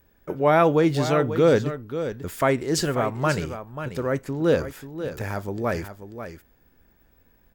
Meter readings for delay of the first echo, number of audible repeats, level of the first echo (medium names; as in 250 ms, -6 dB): 538 ms, 1, -10.5 dB